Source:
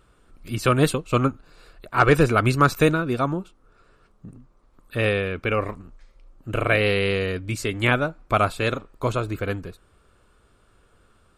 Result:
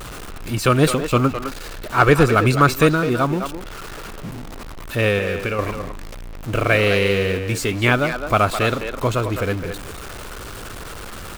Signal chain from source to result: zero-crossing step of -30.5 dBFS; 5.18–5.59 compressor, threshold -23 dBFS, peak gain reduction 6 dB; speakerphone echo 0.21 s, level -7 dB; gain +2.5 dB

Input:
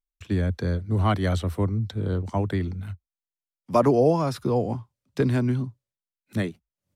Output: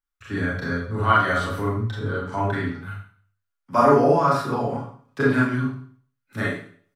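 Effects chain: bell 1400 Hz +15 dB 0.97 oct; comb 7.2 ms, depth 53%; Schroeder reverb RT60 0.5 s, combs from 27 ms, DRR -6 dB; gain -7.5 dB

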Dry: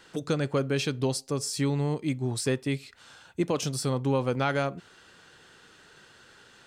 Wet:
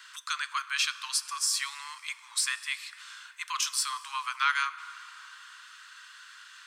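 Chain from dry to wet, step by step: steep high-pass 1000 Hz 96 dB/oct; plate-style reverb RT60 3.7 s, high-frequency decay 0.5×, DRR 13.5 dB; gain +5.5 dB

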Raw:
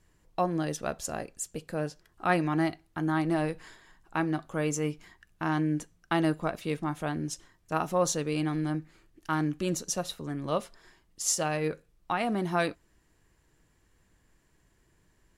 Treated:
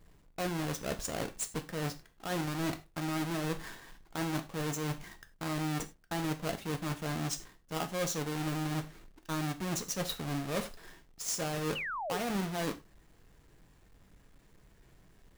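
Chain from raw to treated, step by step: half-waves squared off; reverse; compressor 6:1, threshold -33 dBFS, peak gain reduction 16 dB; reverse; non-linear reverb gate 0.12 s falling, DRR 8 dB; painted sound fall, 11.75–12.18, 380–3100 Hz -37 dBFS

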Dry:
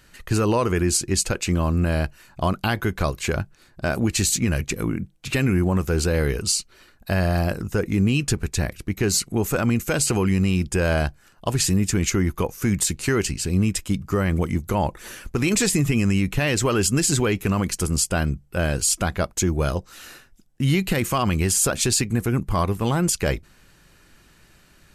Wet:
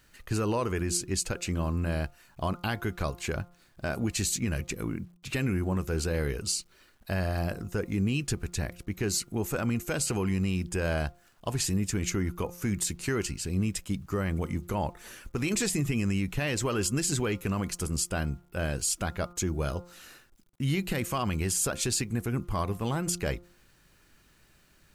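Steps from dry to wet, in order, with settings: bit-crush 10-bit; de-hum 175.3 Hz, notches 8; gain -8 dB

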